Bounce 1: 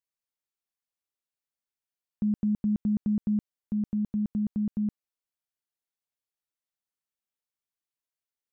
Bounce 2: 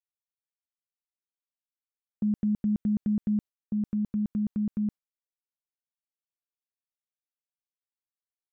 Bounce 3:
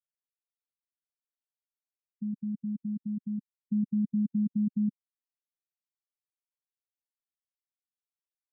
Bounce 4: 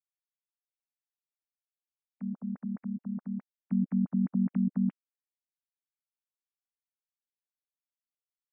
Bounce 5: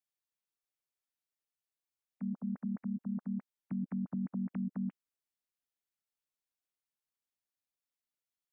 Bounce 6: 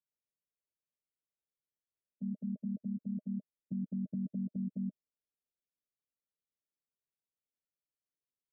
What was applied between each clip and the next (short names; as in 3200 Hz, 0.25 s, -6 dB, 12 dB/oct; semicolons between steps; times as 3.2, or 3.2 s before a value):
gate with hold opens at -25 dBFS
in parallel at +3 dB: limiter -28.5 dBFS, peak gain reduction 7 dB; on the sum: negative-ratio compressor -27 dBFS, ratio -0.5; spectral expander 2.5:1; gain -3 dB
sine-wave speech
limiter -29.5 dBFS, peak gain reduction 10 dB
rippled Chebyshev low-pass 630 Hz, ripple 3 dB